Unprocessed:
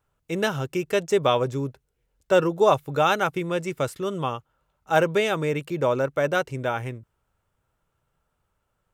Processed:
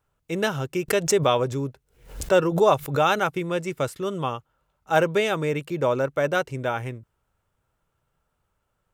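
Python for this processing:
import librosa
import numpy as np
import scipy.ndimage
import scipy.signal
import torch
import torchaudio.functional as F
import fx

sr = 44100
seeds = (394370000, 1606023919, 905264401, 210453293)

y = fx.pre_swell(x, sr, db_per_s=120.0, at=(0.88, 3.18), fade=0.02)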